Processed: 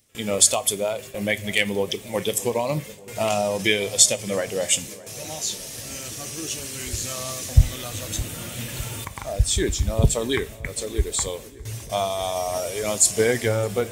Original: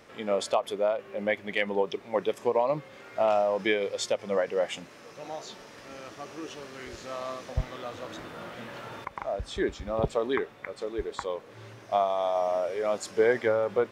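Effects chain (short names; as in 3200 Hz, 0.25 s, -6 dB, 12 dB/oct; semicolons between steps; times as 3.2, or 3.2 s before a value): bin magnitudes rounded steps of 15 dB; high shelf 2800 Hz +12 dB; gate with hold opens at -35 dBFS; EQ curve 110 Hz 0 dB, 170 Hz -8 dB, 490 Hz -17 dB, 1300 Hz -21 dB, 2500 Hz -13 dB, 5000 Hz -11 dB, 8400 Hz +1 dB; darkening echo 0.611 s, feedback 63%, low-pass 1700 Hz, level -19 dB; on a send at -15 dB: reverb, pre-delay 3 ms; on the sum: maximiser +19 dB; gain -1 dB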